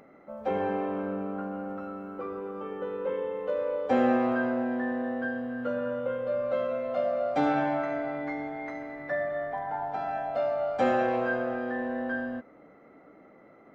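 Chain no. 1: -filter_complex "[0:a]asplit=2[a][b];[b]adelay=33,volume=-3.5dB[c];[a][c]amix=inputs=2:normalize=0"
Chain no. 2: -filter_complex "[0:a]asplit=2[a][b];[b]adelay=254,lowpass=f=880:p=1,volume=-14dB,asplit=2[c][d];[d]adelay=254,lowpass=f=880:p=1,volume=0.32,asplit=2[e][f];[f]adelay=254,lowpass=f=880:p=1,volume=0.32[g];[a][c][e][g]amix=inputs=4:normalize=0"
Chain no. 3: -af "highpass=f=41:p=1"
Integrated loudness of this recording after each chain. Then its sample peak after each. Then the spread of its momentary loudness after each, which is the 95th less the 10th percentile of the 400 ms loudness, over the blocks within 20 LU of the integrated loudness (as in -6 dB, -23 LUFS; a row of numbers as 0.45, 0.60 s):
-28.5, -30.5, -30.5 LUFS; -10.0, -12.5, -13.0 dBFS; 12, 12, 11 LU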